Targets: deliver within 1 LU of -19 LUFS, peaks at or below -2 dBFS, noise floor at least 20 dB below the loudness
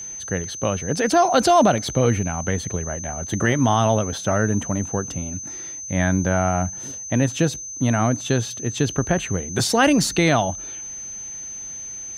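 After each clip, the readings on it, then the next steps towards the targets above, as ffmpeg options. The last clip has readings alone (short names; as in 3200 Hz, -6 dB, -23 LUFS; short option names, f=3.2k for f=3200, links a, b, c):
steady tone 6200 Hz; tone level -31 dBFS; loudness -21.5 LUFS; peak -6.5 dBFS; loudness target -19.0 LUFS
-> -af "bandreject=f=6.2k:w=30"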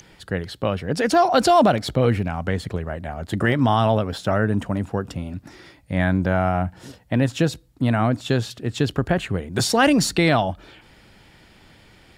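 steady tone none; loudness -21.5 LUFS; peak -6.5 dBFS; loudness target -19.0 LUFS
-> -af "volume=2.5dB"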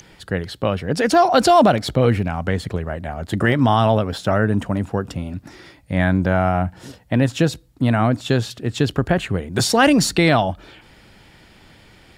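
loudness -19.0 LUFS; peak -4.0 dBFS; noise floor -50 dBFS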